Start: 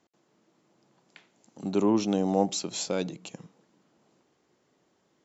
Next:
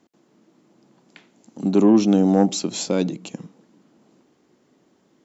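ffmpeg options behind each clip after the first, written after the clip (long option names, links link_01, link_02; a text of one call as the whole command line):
ffmpeg -i in.wav -af "equalizer=frequency=250:width_type=o:width=1.2:gain=8.5,acontrast=89,volume=-2.5dB" out.wav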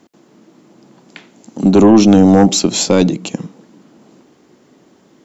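ffmpeg -i in.wav -af "apsyclip=13.5dB,aeval=exprs='1.06*(cos(1*acos(clip(val(0)/1.06,-1,1)))-cos(1*PI/2))+0.0531*(cos(2*acos(clip(val(0)/1.06,-1,1)))-cos(2*PI/2))':channel_layout=same,volume=-2dB" out.wav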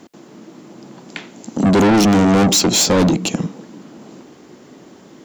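ffmpeg -i in.wav -af "asoftclip=type=tanh:threshold=-17.5dB,volume=7dB" out.wav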